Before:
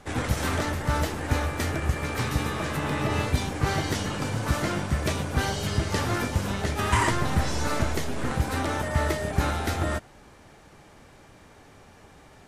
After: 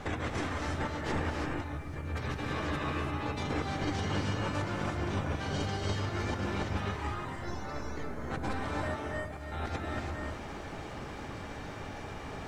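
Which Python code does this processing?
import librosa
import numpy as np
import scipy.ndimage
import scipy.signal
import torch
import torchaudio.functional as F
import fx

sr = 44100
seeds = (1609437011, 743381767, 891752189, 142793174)

y = fx.spec_gate(x, sr, threshold_db=-30, keep='strong')
y = fx.low_shelf(y, sr, hz=210.0, db=9.5, at=(1.47, 2.16))
y = fx.over_compress(y, sr, threshold_db=-36.0, ratio=-1.0)
y = fx.comb_fb(y, sr, f0_hz=74.0, decay_s=1.5, harmonics='all', damping=0.0, mix_pct=70, at=(8.97, 9.52))
y = fx.dmg_noise_colour(y, sr, seeds[0], colour='violet', level_db=-57.0)
y = fx.air_absorb(y, sr, metres=70.0)
y = fx.rev_gated(y, sr, seeds[1], gate_ms=360, shape='rising', drr_db=0.5)
y = y * librosa.db_to_amplitude(-1.5)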